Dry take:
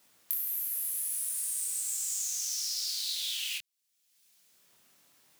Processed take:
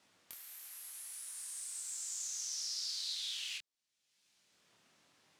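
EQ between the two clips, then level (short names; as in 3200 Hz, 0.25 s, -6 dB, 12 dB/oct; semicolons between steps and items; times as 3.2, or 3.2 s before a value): dynamic EQ 2700 Hz, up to -6 dB, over -50 dBFS, Q 1.3; air absorption 80 m; 0.0 dB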